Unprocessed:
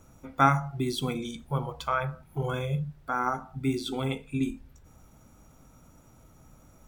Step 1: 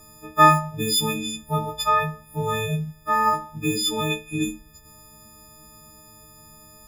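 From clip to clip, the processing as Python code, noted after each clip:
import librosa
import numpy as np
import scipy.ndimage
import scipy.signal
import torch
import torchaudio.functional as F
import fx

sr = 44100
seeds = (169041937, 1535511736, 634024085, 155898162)

y = fx.freq_snap(x, sr, grid_st=6)
y = y * librosa.db_to_amplitude(3.5)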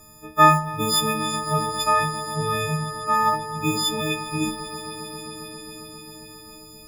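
y = fx.echo_swell(x, sr, ms=134, loudest=5, wet_db=-17.0)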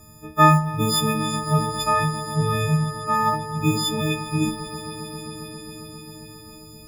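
y = fx.peak_eq(x, sr, hz=110.0, db=9.0, octaves=2.5)
y = y * librosa.db_to_amplitude(-1.5)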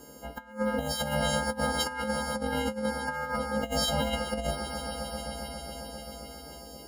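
y = fx.over_compress(x, sr, threshold_db=-24.0, ratio=-0.5)
y = y * np.sin(2.0 * np.pi * 370.0 * np.arange(len(y)) / sr)
y = y * librosa.db_to_amplitude(-2.5)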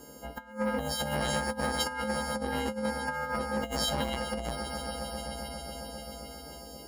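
y = fx.transformer_sat(x, sr, knee_hz=680.0)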